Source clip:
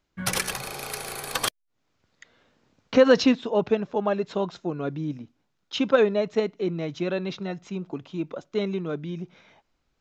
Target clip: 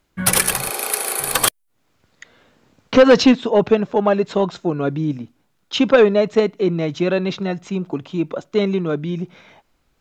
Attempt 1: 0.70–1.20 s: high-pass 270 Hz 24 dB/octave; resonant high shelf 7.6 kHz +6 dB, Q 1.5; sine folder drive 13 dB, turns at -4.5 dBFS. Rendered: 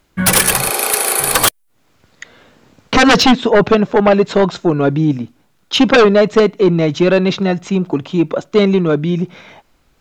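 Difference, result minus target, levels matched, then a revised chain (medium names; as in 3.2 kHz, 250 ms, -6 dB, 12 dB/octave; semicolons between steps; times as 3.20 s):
sine folder: distortion +14 dB
0.70–1.20 s: high-pass 270 Hz 24 dB/octave; resonant high shelf 7.6 kHz +6 dB, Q 1.5; sine folder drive 5 dB, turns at -4.5 dBFS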